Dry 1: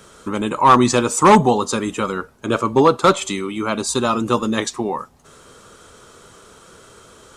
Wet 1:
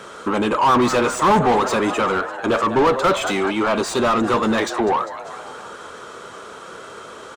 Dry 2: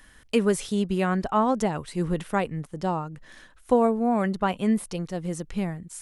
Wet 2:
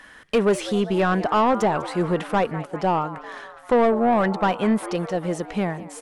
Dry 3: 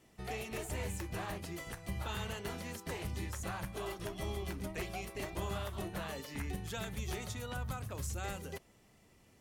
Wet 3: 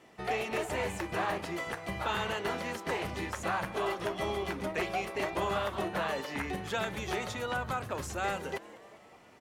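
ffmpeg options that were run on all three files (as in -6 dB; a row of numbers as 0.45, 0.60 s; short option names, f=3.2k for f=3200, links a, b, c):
-filter_complex "[0:a]asplit=6[a][b][c][d][e][f];[b]adelay=199,afreqshift=130,volume=-20.5dB[g];[c]adelay=398,afreqshift=260,volume=-24.8dB[h];[d]adelay=597,afreqshift=390,volume=-29.1dB[i];[e]adelay=796,afreqshift=520,volume=-33.4dB[j];[f]adelay=995,afreqshift=650,volume=-37.7dB[k];[a][g][h][i][j][k]amix=inputs=6:normalize=0,asplit=2[l][m];[m]highpass=f=720:p=1,volume=26dB,asoftclip=type=tanh:threshold=-2.5dB[n];[l][n]amix=inputs=2:normalize=0,lowpass=f=1.4k:p=1,volume=-6dB,volume=-5.5dB"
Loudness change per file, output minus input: -1.0, +3.5, +7.0 LU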